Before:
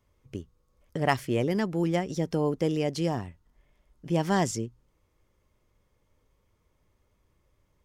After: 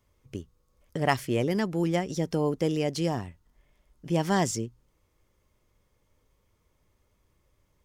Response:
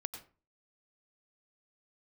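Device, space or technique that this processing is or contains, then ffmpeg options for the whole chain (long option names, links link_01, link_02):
exciter from parts: -filter_complex "[0:a]asplit=2[link_01][link_02];[link_02]highpass=frequency=4700:poles=1,asoftclip=type=tanh:threshold=-34.5dB,volume=-4.5dB[link_03];[link_01][link_03]amix=inputs=2:normalize=0"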